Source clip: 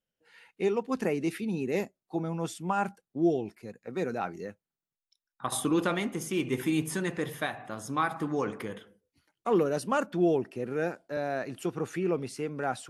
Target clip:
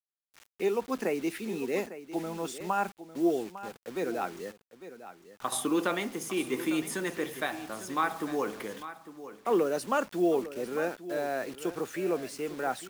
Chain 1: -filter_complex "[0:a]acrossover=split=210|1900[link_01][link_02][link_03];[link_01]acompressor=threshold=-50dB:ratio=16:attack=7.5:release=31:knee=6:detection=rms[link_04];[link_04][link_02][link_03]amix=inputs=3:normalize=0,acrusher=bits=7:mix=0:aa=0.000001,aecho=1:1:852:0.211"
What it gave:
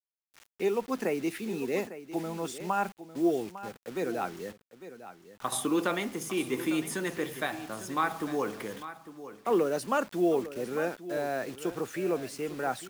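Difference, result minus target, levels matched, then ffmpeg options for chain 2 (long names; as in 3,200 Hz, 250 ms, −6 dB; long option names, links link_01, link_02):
downward compressor: peak gain reduction −9 dB
-filter_complex "[0:a]acrossover=split=210|1900[link_01][link_02][link_03];[link_01]acompressor=threshold=-59.5dB:ratio=16:attack=7.5:release=31:knee=6:detection=rms[link_04];[link_04][link_02][link_03]amix=inputs=3:normalize=0,acrusher=bits=7:mix=0:aa=0.000001,aecho=1:1:852:0.211"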